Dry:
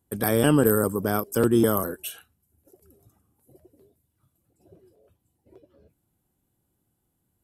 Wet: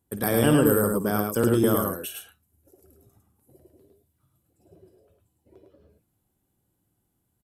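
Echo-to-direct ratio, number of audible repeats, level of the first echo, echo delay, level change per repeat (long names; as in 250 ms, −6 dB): −3.0 dB, 2, −12.0 dB, 53 ms, +8.0 dB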